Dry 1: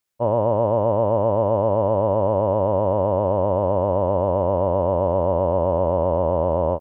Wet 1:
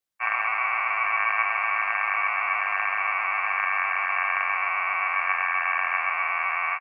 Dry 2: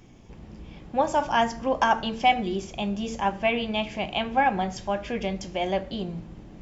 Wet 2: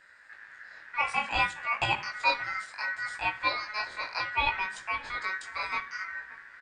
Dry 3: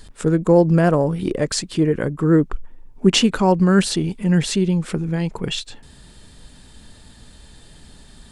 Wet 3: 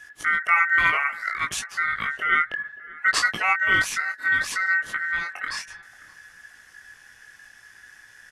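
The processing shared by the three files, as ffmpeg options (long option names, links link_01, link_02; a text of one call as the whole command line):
ffmpeg -i in.wav -filter_complex "[0:a]flanger=delay=16.5:depth=6.8:speed=0.62,aeval=exprs='val(0)*sin(2*PI*1700*n/s)':channel_layout=same,asplit=2[link_01][link_02];[link_02]adelay=578,lowpass=frequency=1100:poles=1,volume=-18dB,asplit=2[link_03][link_04];[link_04]adelay=578,lowpass=frequency=1100:poles=1,volume=0.46,asplit=2[link_05][link_06];[link_06]adelay=578,lowpass=frequency=1100:poles=1,volume=0.46,asplit=2[link_07][link_08];[link_08]adelay=578,lowpass=frequency=1100:poles=1,volume=0.46[link_09];[link_01][link_03][link_05][link_07][link_09]amix=inputs=5:normalize=0" out.wav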